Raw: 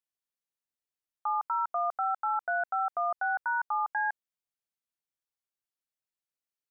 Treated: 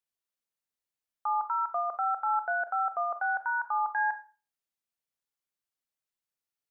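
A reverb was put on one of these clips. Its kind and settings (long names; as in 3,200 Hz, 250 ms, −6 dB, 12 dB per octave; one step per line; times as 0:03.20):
four-comb reverb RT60 0.36 s, combs from 27 ms, DRR 9.5 dB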